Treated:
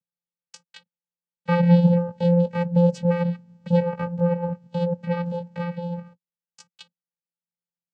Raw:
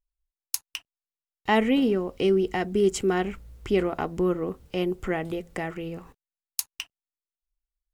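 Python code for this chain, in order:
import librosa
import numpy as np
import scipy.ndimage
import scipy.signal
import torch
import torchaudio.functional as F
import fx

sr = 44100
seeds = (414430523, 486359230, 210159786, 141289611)

y = fx.pitch_glide(x, sr, semitones=5.5, runs='starting unshifted')
y = fx.vocoder(y, sr, bands=8, carrier='square', carrier_hz=173.0)
y = y * 10.0 ** (6.5 / 20.0)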